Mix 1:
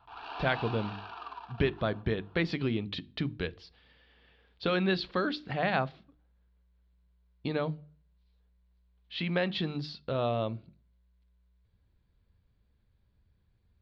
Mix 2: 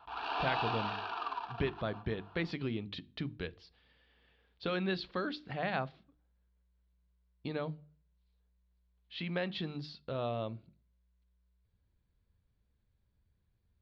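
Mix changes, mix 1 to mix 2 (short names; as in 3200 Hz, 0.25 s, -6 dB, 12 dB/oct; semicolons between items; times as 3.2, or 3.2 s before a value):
speech -6.0 dB; background +5.0 dB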